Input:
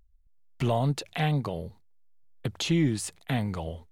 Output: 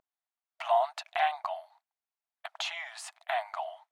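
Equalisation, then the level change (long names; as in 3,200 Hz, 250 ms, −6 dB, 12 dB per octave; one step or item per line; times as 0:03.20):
linear-phase brick-wall high-pass 620 Hz
low-pass filter 1,000 Hz 6 dB per octave
+8.0 dB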